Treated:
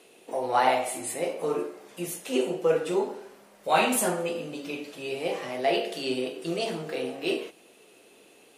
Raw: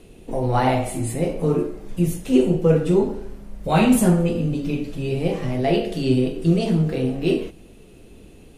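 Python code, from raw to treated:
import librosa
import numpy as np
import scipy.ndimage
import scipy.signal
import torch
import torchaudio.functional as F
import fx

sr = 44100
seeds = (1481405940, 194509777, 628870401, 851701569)

y = scipy.signal.sosfilt(scipy.signal.butter(2, 570.0, 'highpass', fs=sr, output='sos'), x)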